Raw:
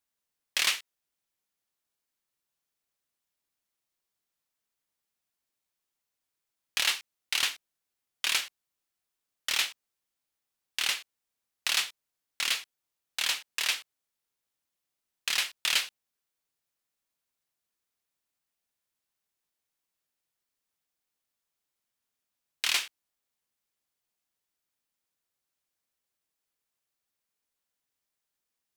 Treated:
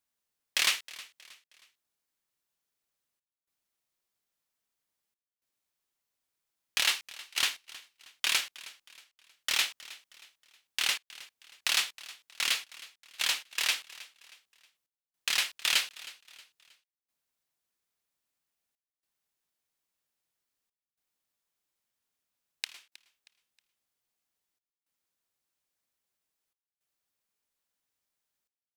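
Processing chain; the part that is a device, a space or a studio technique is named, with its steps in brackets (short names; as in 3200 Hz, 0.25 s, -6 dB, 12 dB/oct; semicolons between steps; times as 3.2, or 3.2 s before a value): trance gate with a delay (step gate "xxxxxxxxx..xxx" 108 bpm -24 dB; feedback echo 0.316 s, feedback 39%, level -19 dB)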